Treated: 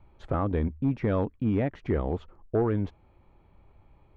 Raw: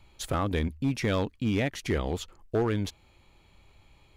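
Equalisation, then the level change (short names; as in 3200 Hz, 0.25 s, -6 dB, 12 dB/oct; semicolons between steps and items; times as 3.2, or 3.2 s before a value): LPF 1200 Hz 12 dB/oct; +1.5 dB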